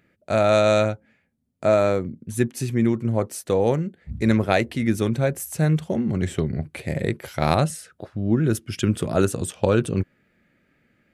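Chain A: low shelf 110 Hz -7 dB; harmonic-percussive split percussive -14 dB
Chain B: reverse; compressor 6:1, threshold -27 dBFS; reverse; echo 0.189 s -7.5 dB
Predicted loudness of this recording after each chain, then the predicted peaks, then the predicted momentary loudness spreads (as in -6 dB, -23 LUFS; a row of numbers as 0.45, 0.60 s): -26.0, -31.5 LUFS; -9.0, -15.5 dBFS; 13, 6 LU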